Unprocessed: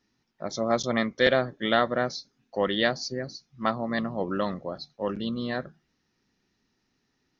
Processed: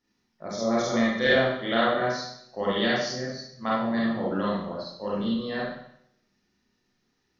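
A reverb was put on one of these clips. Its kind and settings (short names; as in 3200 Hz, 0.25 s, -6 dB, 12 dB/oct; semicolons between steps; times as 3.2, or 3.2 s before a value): Schroeder reverb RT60 0.71 s, combs from 31 ms, DRR -6.5 dB; gain -6.5 dB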